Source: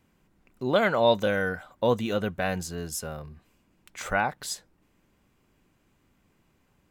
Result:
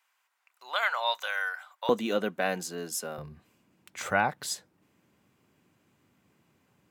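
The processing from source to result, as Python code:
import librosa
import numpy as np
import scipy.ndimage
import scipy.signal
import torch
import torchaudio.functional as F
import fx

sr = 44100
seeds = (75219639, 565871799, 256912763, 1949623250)

y = fx.highpass(x, sr, hz=fx.steps((0.0, 900.0), (1.89, 210.0), (3.18, 92.0)), slope=24)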